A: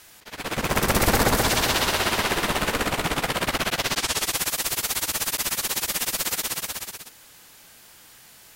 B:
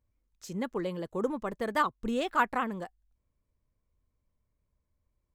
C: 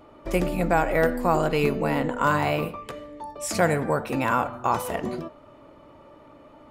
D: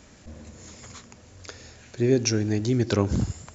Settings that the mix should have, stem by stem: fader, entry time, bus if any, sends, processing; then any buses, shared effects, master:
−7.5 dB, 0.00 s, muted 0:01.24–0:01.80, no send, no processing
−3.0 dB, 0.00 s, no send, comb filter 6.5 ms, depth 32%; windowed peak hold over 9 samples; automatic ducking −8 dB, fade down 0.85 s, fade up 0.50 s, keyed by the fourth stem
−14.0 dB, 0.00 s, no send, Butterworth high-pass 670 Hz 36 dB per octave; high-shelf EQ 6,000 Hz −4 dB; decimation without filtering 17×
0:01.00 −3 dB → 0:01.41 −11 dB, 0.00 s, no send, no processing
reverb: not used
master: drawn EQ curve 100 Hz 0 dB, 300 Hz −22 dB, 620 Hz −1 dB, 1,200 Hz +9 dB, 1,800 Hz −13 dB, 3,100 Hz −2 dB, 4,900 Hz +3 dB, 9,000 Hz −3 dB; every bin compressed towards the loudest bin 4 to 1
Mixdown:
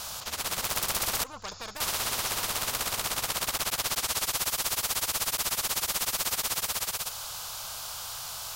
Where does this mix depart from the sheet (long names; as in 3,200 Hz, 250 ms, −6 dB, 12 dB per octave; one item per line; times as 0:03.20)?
stem C: muted
stem D −3.0 dB → −11.5 dB